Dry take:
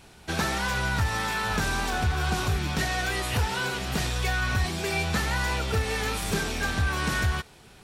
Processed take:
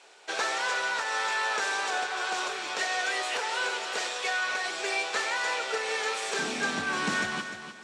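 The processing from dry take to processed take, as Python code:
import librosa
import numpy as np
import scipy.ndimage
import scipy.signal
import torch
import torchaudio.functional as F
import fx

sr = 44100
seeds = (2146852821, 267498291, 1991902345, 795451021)

y = fx.ellip_bandpass(x, sr, low_hz=fx.steps((0.0, 450.0), (6.38, 210.0)), high_hz=7900.0, order=3, stop_db=80)
y = fx.echo_feedback(y, sr, ms=301, feedback_pct=27, wet_db=-10)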